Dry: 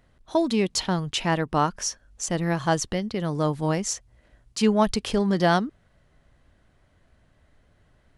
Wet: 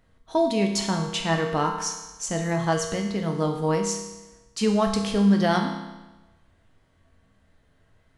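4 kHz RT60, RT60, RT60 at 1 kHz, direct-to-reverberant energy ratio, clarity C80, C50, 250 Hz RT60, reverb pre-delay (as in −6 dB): 1.1 s, 1.1 s, 1.1 s, 1.5 dB, 7.5 dB, 5.5 dB, 1.1 s, 4 ms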